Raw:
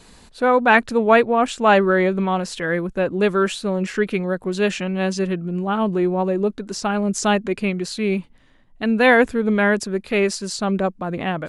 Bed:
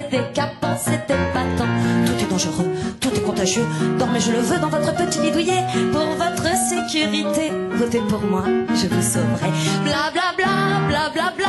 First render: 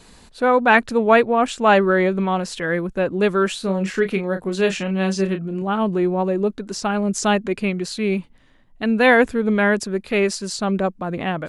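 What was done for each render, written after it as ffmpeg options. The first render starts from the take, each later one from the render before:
-filter_complex "[0:a]asettb=1/sr,asplit=3[s0][s1][s2];[s0]atrim=end=3.574[s3];[s1]atrim=start=3.57:end=5.62,asetpts=PTS-STARTPTS,afade=t=in:d=0.004:c=qsin,afade=t=out:st=2.046:d=0.004:c=qsin,asplit=2[s4][s5];[s5]adelay=31,volume=0.398[s6];[s4][s6]amix=inputs=2:normalize=0,atrim=end_sample=90405[s7];[s2]atrim=start=5.616[s8];[s3][s7]acrossfade=d=0.004:c1=hsin:c2=qsin[s9];[s9][s8]acrossfade=d=0.004:c1=qsin:c2=hsin"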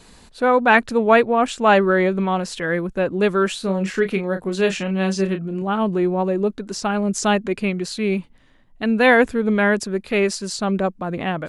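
-af anull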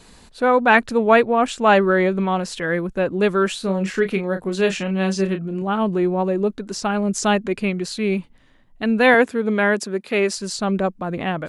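-filter_complex "[0:a]asettb=1/sr,asplit=3[s0][s1][s2];[s0]atrim=end=9.144[s3];[s1]atrim=start=9.14:end=10.38,asetpts=PTS-STARTPTS,afade=t=in:d=0.004:c=qsin,afade=t=out:st=1.236:d=0.004:c=qsin,highpass=200[s4];[s2]atrim=start=10.376[s5];[s3][s4]acrossfade=d=0.004:c1=hsin:c2=qsin[s6];[s6][s5]acrossfade=d=0.004:c1=qsin:c2=hsin"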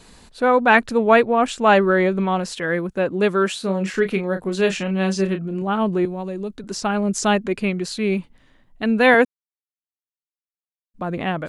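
-filter_complex "[0:a]asettb=1/sr,asplit=3[s0][s1][s2];[s0]atrim=end=2.524[s3];[s1]atrim=start=2.52:end=3.93,asetpts=PTS-STARTPTS,afade=t=in:d=0.004:c=qsin,afade=t=out:st=1.406:d=0.004:c=qsin,highpass=f=95:p=1[s4];[s2]atrim=start=3.926[s5];[s3][s4]acrossfade=d=0.004:c1=hsin:c2=qsin[s6];[s6][s5]acrossfade=d=0.004:c1=qsin:c2=hsin,asettb=1/sr,asplit=3[s7][s8][s9];[s7]atrim=end=6.054[s10];[s8]atrim=start=6.05:end=6.64,asetpts=PTS-STARTPTS,afade=t=in:d=0.004:c=qsin,afade=t=out:st=0.586:d=0.004:c=qsin,acrossover=split=140|3000[s11][s12][s13];[s12]acompressor=threshold=0.00794:ratio=1.5:attack=3.2:release=140:knee=2.83:detection=peak[s14];[s11][s14][s13]amix=inputs=3:normalize=0[s15];[s9]atrim=start=6.636[s16];[s10][s15]acrossfade=d=0.004:c1=hsin:c2=qsin[s17];[s17][s16]acrossfade=d=0.004:c1=qsin:c2=hsin,asplit=3[s18][s19][s20];[s18]atrim=end=9.25,asetpts=PTS-STARTPTS,afade=t=out:st=9.246:d=0.004:c=hsin[s21];[s19]atrim=start=9.25:end=10.94,asetpts=PTS-STARTPTS,volume=0[s22];[s20]atrim=start=10.94,asetpts=PTS-STARTPTS,afade=t=in:d=0.004:c=hsin[s23];[s21][s22][s23]concat=n=3:v=0:a=1"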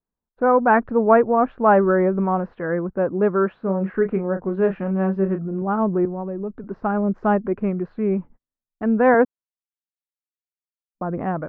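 -af "agate=range=0.01:threshold=0.01:ratio=16:detection=peak,lowpass=f=1400:w=0.5412,lowpass=f=1400:w=1.3066"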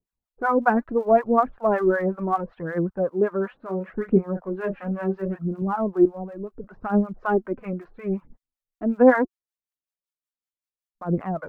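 -filter_complex "[0:a]aphaser=in_gain=1:out_gain=1:delay=4.2:decay=0.55:speed=0.72:type=triangular,acrossover=split=680[s0][s1];[s0]aeval=exprs='val(0)*(1-1/2+1/2*cos(2*PI*5.3*n/s))':c=same[s2];[s1]aeval=exprs='val(0)*(1-1/2-1/2*cos(2*PI*5.3*n/s))':c=same[s3];[s2][s3]amix=inputs=2:normalize=0"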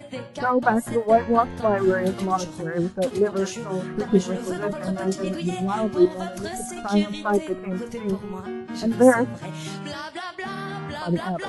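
-filter_complex "[1:a]volume=0.211[s0];[0:a][s0]amix=inputs=2:normalize=0"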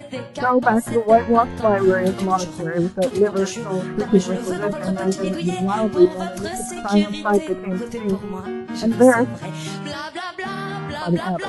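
-af "volume=1.58,alimiter=limit=0.708:level=0:latency=1"

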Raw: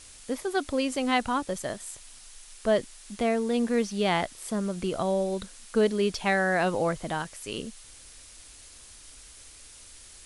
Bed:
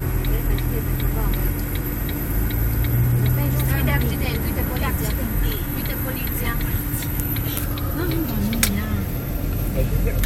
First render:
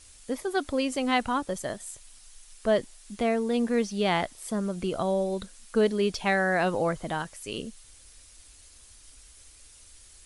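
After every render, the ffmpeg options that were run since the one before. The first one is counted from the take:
-af "afftdn=nr=6:nf=-50"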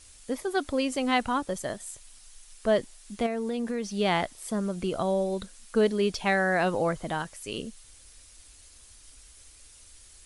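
-filter_complex "[0:a]asettb=1/sr,asplit=3[s0][s1][s2];[s0]atrim=end=3.264[s3];[s1]atrim=start=3.26:end=3.87,asetpts=PTS-STARTPTS,afade=t=in:d=0.004:c=qsin,afade=t=out:st=0.606:d=0.004:c=qsin,acompressor=threshold=0.0501:ratio=6:attack=3.2:release=140:knee=1:detection=peak[s4];[s2]atrim=start=3.866[s5];[s3][s4]acrossfade=d=0.004:c1=hsin:c2=qsin[s6];[s6][s5]acrossfade=d=0.004:c1=qsin:c2=hsin"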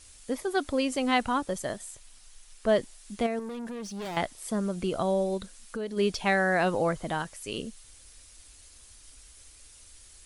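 -filter_complex "[0:a]asettb=1/sr,asplit=3[s0][s1][s2];[s0]atrim=end=1.864[s3];[s1]atrim=start=1.86:end=2.69,asetpts=PTS-STARTPTS,afade=t=in:d=0.004:c=qsin,afade=t=out:st=0.826:d=0.004:c=qsin,highshelf=f=5500:g=-4.5[s4];[s2]atrim=start=2.686[s5];[s3][s4]acrossfade=d=0.004:c1=hsin:c2=qsin[s6];[s6][s5]acrossfade=d=0.004:c1=qsin:c2=hsin,asettb=1/sr,asplit=3[s7][s8][s9];[s7]atrim=end=3.394[s10];[s8]atrim=start=3.39:end=4.17,asetpts=PTS-STARTPTS,afade=t=in:d=0.004:c=qsin,afade=t=out:st=0.776:d=0.004:c=qsin,aeval=exprs='(tanh(50.1*val(0)+0.15)-tanh(0.15))/50.1':c=same[s11];[s9]atrim=start=4.166[s12];[s10][s11]acrossfade=d=0.004:c1=hsin:c2=qsin[s13];[s13][s12]acrossfade=d=0.004:c1=qsin:c2=hsin,asplit=3[s14][s15][s16];[s14]afade=t=out:st=5.37:d=0.02[s17];[s15]acompressor=threshold=0.02:ratio=3:attack=3.2:release=140:knee=1:detection=peak,afade=t=in:st=5.37:d=0.02,afade=t=out:st=5.96:d=0.02[s18];[s16]afade=t=in:st=5.96:d=0.02[s19];[s17][s18][s19]amix=inputs=3:normalize=0"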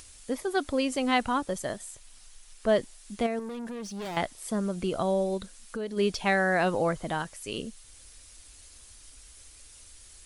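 -af "acompressor=mode=upward:threshold=0.00501:ratio=2.5"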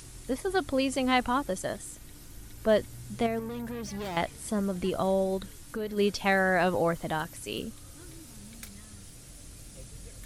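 -filter_complex "[1:a]volume=0.0473[s0];[0:a][s0]amix=inputs=2:normalize=0"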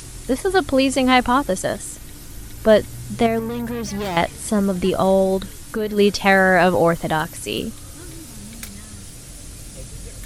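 -af "volume=3.35,alimiter=limit=0.708:level=0:latency=1"

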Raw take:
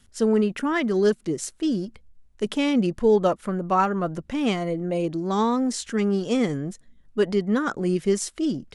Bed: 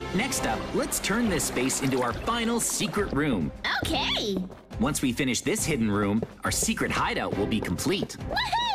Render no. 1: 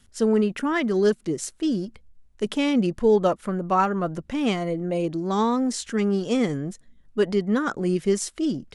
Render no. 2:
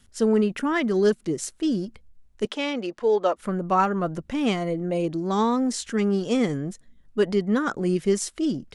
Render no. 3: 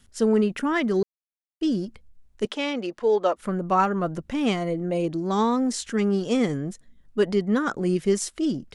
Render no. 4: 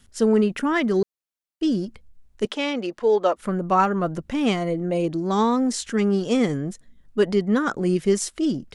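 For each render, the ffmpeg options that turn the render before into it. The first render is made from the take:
-af anull
-filter_complex "[0:a]asettb=1/sr,asplit=3[s0][s1][s2];[s0]atrim=end=2.454[s3];[s1]atrim=start=2.45:end=3.37,asetpts=PTS-STARTPTS,afade=t=in:d=0.004:c=qsin,afade=t=out:st=0.916:d=0.004:c=qsin,acrossover=split=330 7000:gain=0.0708 1 0.178[s4][s5][s6];[s4][s5][s6]amix=inputs=3:normalize=0[s7];[s2]atrim=start=3.366[s8];[s3][s7]acrossfade=d=0.004:c1=hsin:c2=qsin[s9];[s9][s8]acrossfade=d=0.004:c1=qsin:c2=hsin"
-filter_complex "[0:a]asplit=3[s0][s1][s2];[s0]atrim=end=1.03,asetpts=PTS-STARTPTS,afade=t=out:st=1.026:d=0.004:c=hsin[s3];[s1]atrim=start=1.03:end=1.61,asetpts=PTS-STARTPTS,volume=0[s4];[s2]atrim=start=1.61,asetpts=PTS-STARTPTS,afade=t=in:d=0.004:c=hsin[s5];[s3][s4][s5]concat=n=3:v=0:a=1"
-af "volume=1.26"

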